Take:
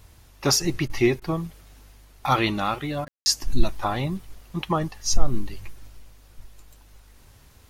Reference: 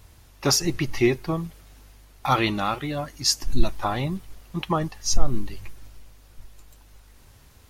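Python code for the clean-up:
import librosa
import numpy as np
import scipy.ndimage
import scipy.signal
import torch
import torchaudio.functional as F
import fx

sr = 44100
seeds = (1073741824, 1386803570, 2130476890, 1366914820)

y = fx.fix_ambience(x, sr, seeds[0], print_start_s=7.18, print_end_s=7.68, start_s=3.08, end_s=3.26)
y = fx.fix_interpolate(y, sr, at_s=(0.88, 1.2, 3.05), length_ms=16.0)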